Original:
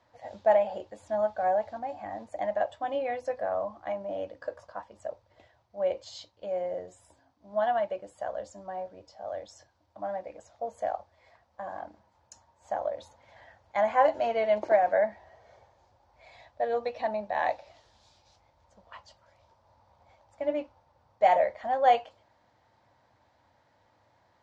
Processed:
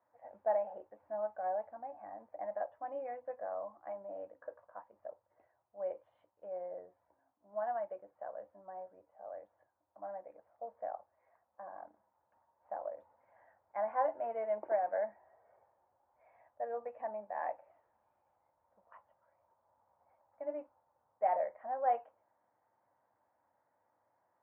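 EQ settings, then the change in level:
Gaussian smoothing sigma 5.2 samples
high-pass filter 890 Hz 6 dB per octave
high-frequency loss of the air 400 metres
−3.0 dB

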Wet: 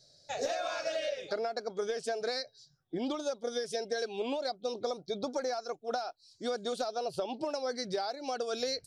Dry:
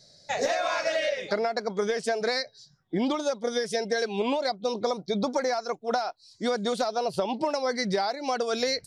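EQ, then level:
thirty-one-band graphic EQ 200 Hz −10 dB, 1,000 Hz −8 dB, 2,000 Hz −10 dB
−6.0 dB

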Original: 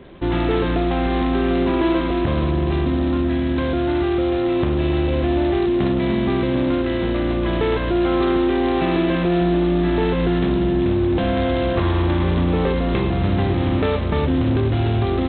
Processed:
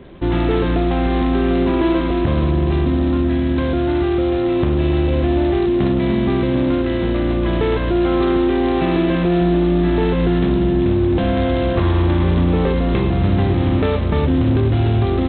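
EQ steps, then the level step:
low-shelf EQ 340 Hz +4 dB
0.0 dB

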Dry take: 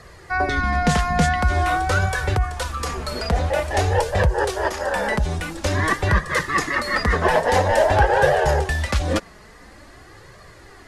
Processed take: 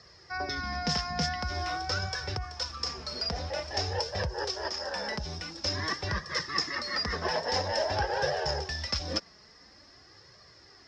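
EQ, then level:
high-pass filter 67 Hz
transistor ladder low-pass 5,400 Hz, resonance 90%
0.0 dB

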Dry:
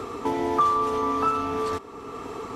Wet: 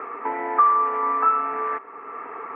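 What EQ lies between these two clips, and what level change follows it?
high-pass filter 450 Hz 6 dB per octave
Butterworth low-pass 2,100 Hz 48 dB per octave
spectral tilt +4.5 dB per octave
+4.0 dB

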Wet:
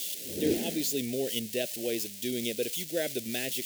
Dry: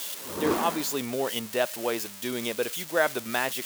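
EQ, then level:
Butterworth band-reject 1,100 Hz, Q 0.54
0.0 dB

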